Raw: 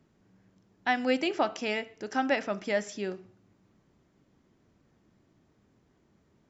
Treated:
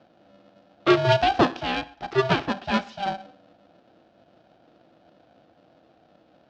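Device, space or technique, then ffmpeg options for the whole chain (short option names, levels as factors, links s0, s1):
ring modulator pedal into a guitar cabinet: -filter_complex "[0:a]asettb=1/sr,asplit=3[s0][s1][s2];[s0]atrim=end=1.484[s3];[s1]atrim=start=1.48:end=3.06,asetpts=PTS-STARTPTS,afade=t=in:d=0.004:c=qsin,afade=t=out:st=1.576:d=0.004:c=qsin,bass=f=250:g=-14,treble=f=4000:g=-8[s4];[s2]atrim=start=3.056[s5];[s3][s4]acrossfade=d=0.004:c1=hsin:c2=qsin[s6];[s6][s5]acrossfade=d=0.004:c1=qsin:c2=hsin,aeval=exprs='val(0)*sgn(sin(2*PI*390*n/s))':c=same,highpass=100,equalizer=f=340:t=q:w=4:g=9,equalizer=f=710:t=q:w=4:g=7,equalizer=f=1000:t=q:w=4:g=-6,equalizer=f=2100:t=q:w=4:g=-8,lowpass=f=4400:w=0.5412,lowpass=f=4400:w=1.3066,volume=2.24"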